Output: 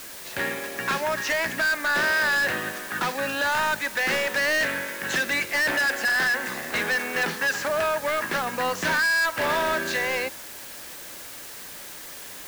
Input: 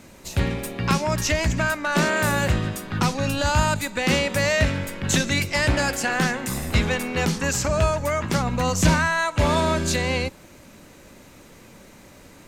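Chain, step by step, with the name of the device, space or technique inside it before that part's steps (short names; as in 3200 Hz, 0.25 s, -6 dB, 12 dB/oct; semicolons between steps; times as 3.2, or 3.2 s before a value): drive-through speaker (BPF 390–3700 Hz; bell 1700 Hz +11 dB 0.35 oct; hard clip -20.5 dBFS, distortion -8 dB; white noise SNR 14 dB)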